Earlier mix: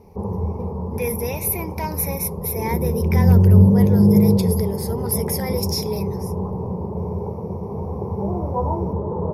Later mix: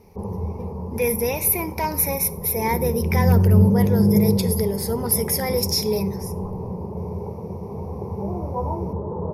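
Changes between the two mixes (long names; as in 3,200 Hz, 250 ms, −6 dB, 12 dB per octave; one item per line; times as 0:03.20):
speech: send on
background −3.5 dB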